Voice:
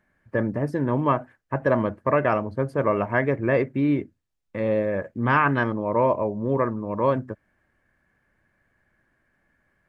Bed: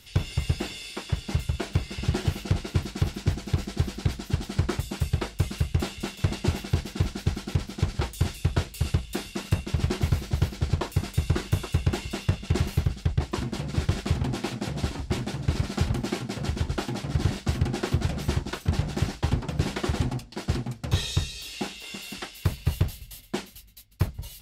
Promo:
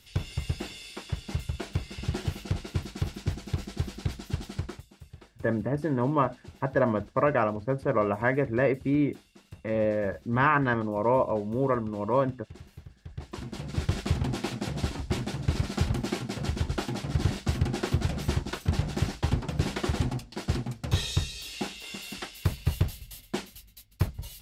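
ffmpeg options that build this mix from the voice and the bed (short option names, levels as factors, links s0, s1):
-filter_complex "[0:a]adelay=5100,volume=0.708[s0];[1:a]volume=5.96,afade=t=out:st=4.45:d=0.41:silence=0.141254,afade=t=in:st=13.02:d=1:silence=0.0944061[s1];[s0][s1]amix=inputs=2:normalize=0"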